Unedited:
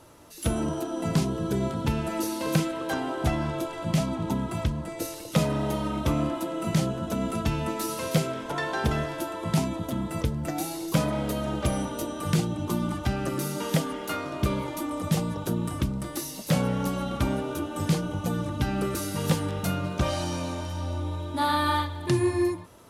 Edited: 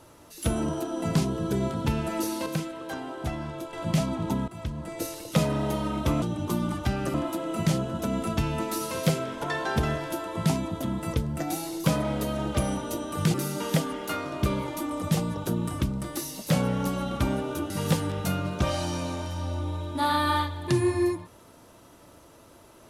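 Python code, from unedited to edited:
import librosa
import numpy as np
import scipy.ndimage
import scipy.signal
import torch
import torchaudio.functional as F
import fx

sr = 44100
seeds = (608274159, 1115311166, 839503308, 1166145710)

y = fx.edit(x, sr, fx.clip_gain(start_s=2.46, length_s=1.27, db=-6.0),
    fx.fade_in_from(start_s=4.48, length_s=0.49, floor_db=-14.5),
    fx.move(start_s=12.42, length_s=0.92, to_s=6.22),
    fx.cut(start_s=17.7, length_s=1.39), tone=tone)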